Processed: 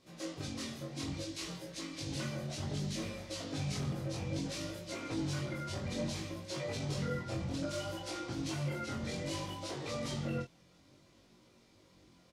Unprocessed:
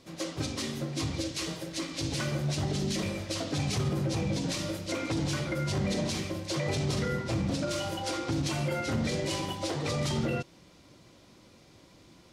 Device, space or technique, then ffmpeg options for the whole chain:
double-tracked vocal: -filter_complex "[0:a]asplit=2[link_01][link_02];[link_02]adelay=22,volume=-4dB[link_03];[link_01][link_03]amix=inputs=2:normalize=0,flanger=delay=16.5:depth=7.2:speed=0.61,volume=-6dB"

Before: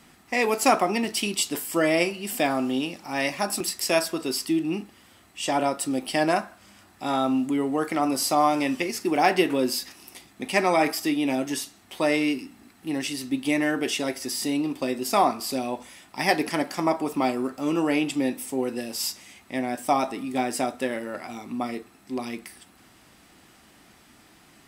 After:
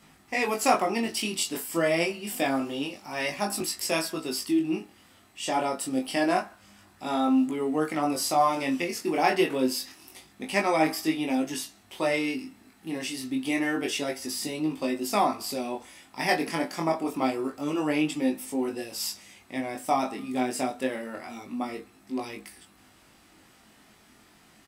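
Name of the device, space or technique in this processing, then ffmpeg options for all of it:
double-tracked vocal: -filter_complex "[0:a]asplit=2[link_01][link_02];[link_02]adelay=19,volume=-11dB[link_03];[link_01][link_03]amix=inputs=2:normalize=0,flanger=delay=19:depth=4.8:speed=0.27"

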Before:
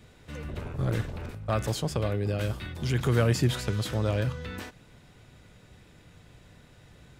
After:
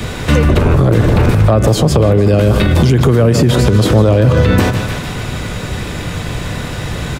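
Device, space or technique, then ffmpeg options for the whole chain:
mastering chain: -filter_complex "[0:a]equalizer=frequency=1100:width_type=o:width=0.3:gain=3.5,aecho=1:1:151|302|453|604|755:0.178|0.0978|0.0538|0.0296|0.0163,acrossover=split=200|710[link_01][link_02][link_03];[link_01]acompressor=threshold=-34dB:ratio=4[link_04];[link_02]acompressor=threshold=-31dB:ratio=4[link_05];[link_03]acompressor=threshold=-49dB:ratio=4[link_06];[link_04][link_05][link_06]amix=inputs=3:normalize=0,acompressor=threshold=-36dB:ratio=2.5,asoftclip=type=hard:threshold=-27dB,alimiter=level_in=33.5dB:limit=-1dB:release=50:level=0:latency=1,volume=-1dB"

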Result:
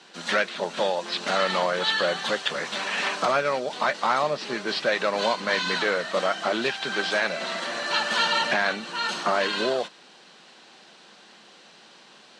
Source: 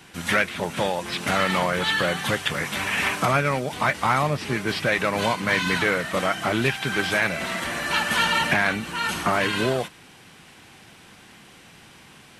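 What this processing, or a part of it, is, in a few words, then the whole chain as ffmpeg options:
television speaker: -af "highpass=frequency=220:width=0.5412,highpass=frequency=220:width=1.3066,equalizer=frequency=280:width_type=q:width=4:gain=-7,equalizer=frequency=580:width_type=q:width=4:gain=4,equalizer=frequency=2200:width_type=q:width=4:gain=-6,equalizer=frequency=4200:width_type=q:width=4:gain=7,lowpass=frequency=7300:width=0.5412,lowpass=frequency=7300:width=1.3066,volume=-1.5dB"

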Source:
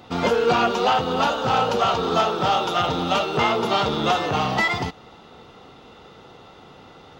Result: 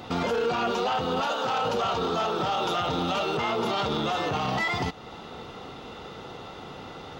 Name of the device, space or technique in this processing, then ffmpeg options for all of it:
stacked limiters: -filter_complex "[0:a]asettb=1/sr,asplit=3[link_01][link_02][link_03];[link_01]atrim=end=1.214[link_04];[link_02]atrim=start=1.21:end=1.65,asetpts=PTS-STARTPTS,afade=type=in:duration=0.004:curve=qsin,afade=type=out:start_time=0.436:duration=0.004:curve=qsin,highpass=frequency=390:poles=1[link_05];[link_03]atrim=start=1.646[link_06];[link_04][link_05]acrossfade=duration=0.004:curve1=hsin:curve2=qsin[link_07];[link_07][link_06]acrossfade=duration=0.004:curve1=qsin:curve2=hsin,alimiter=limit=-12dB:level=0:latency=1:release=283,alimiter=limit=-18dB:level=0:latency=1:release=23,alimiter=limit=-24dB:level=0:latency=1:release=326,volume=5dB"

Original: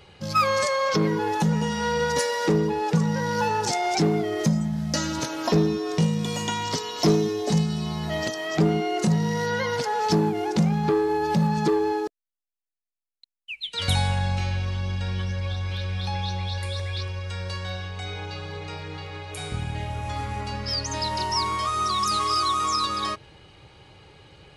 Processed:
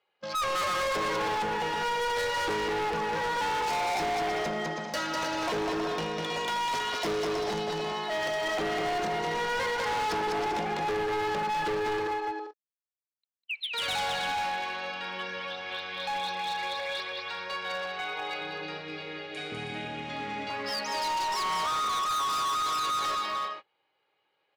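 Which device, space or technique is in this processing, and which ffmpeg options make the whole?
walkie-talkie: -filter_complex "[0:a]asettb=1/sr,asplit=3[link_01][link_02][link_03];[link_01]atrim=end=18.414[link_04];[link_02]atrim=start=18.41:end=20.5,asetpts=PTS-STARTPTS,afade=type=in:duration=0.004:curve=qsin,afade=type=out:start_time=2.086:duration=0.004:curve=qsin,equalizer=frequency=125:width_type=o:width=1:gain=9,equalizer=frequency=250:width_type=o:width=1:gain=8,equalizer=frequency=1000:width_type=o:width=1:gain=-12[link_05];[link_03]atrim=start=20.496[link_06];[link_04][link_05]acrossfade=duration=0.004:curve1=hsin:curve2=qsin[link_07];[link_07][link_06]acrossfade=duration=0.004:curve1=qsin:curve2=hsin,highpass=560,lowpass=3000,aecho=1:1:200|320|392|435.2|461.1:0.631|0.398|0.251|0.158|0.1,asoftclip=type=hard:threshold=-30.5dB,agate=range=-25dB:threshold=-43dB:ratio=16:detection=peak,volume=3dB"

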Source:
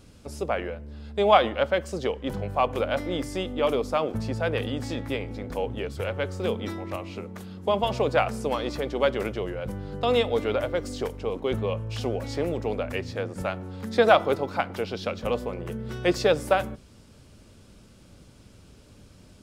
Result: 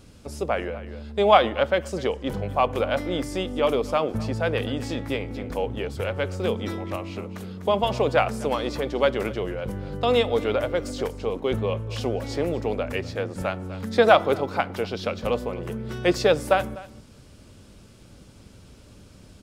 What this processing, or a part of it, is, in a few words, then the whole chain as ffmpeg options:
ducked delay: -filter_complex "[0:a]asplit=3[link_01][link_02][link_03];[link_02]adelay=248,volume=-7dB[link_04];[link_03]apad=whole_len=867782[link_05];[link_04][link_05]sidechaincompress=threshold=-37dB:ratio=8:attack=6.2:release=374[link_06];[link_01][link_06]amix=inputs=2:normalize=0,volume=2dB"

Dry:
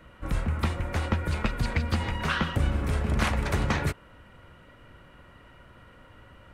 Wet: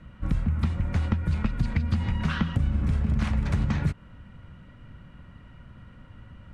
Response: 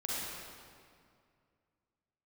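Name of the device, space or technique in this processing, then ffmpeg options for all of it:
jukebox: -af "lowpass=7900,lowshelf=frequency=280:width_type=q:width=1.5:gain=9.5,acompressor=threshold=-18dB:ratio=4,volume=-3dB"

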